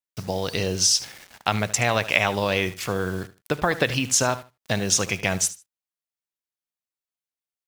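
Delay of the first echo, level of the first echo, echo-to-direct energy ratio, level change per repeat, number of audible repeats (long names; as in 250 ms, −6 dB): 75 ms, −16.5 dB, −16.5 dB, −14.0 dB, 2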